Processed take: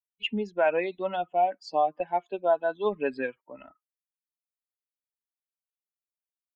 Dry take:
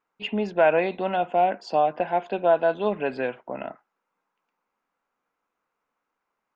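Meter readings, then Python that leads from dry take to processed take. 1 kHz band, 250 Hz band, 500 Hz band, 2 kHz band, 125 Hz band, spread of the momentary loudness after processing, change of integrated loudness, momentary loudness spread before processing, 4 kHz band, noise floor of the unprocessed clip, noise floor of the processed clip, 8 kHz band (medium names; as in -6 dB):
-3.5 dB, -5.0 dB, -4.5 dB, -4.0 dB, -8.0 dB, 6 LU, -4.0 dB, 12 LU, -0.5 dB, -82 dBFS, under -85 dBFS, no reading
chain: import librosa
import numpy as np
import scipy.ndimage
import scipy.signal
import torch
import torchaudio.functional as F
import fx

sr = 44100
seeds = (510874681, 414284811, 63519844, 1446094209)

y = fx.bin_expand(x, sr, power=2.0)
y = fx.peak_eq(y, sr, hz=120.0, db=-12.0, octaves=1.0)
y = fx.rider(y, sr, range_db=4, speed_s=0.5)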